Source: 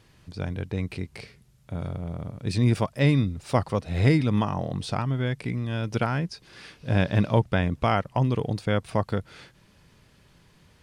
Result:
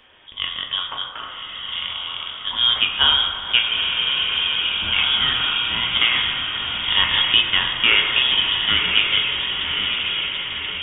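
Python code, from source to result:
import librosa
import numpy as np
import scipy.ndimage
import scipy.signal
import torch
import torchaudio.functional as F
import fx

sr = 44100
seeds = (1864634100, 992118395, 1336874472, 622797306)

p1 = scipy.signal.sosfilt(scipy.signal.butter(2, 260.0, 'highpass', fs=sr, output='sos'), x)
p2 = fx.rider(p1, sr, range_db=4, speed_s=2.0)
p3 = p1 + F.gain(torch.from_numpy(p2), -3.0).numpy()
p4 = fx.echo_diffused(p3, sr, ms=1078, feedback_pct=62, wet_db=-4.5)
p5 = fx.quant_float(p4, sr, bits=2)
p6 = fx.freq_invert(p5, sr, carrier_hz=3500)
p7 = fx.rev_fdn(p6, sr, rt60_s=2.2, lf_ratio=0.85, hf_ratio=0.45, size_ms=75.0, drr_db=1.0)
p8 = fx.spec_freeze(p7, sr, seeds[0], at_s=3.72, hold_s=0.92)
y = F.gain(torch.from_numpy(p8), 2.5).numpy()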